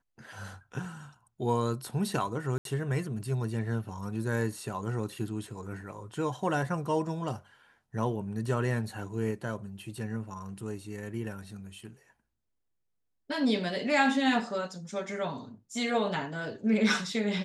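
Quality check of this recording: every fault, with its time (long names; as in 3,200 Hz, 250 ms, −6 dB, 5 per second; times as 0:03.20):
0:02.58–0:02.65: drop-out 72 ms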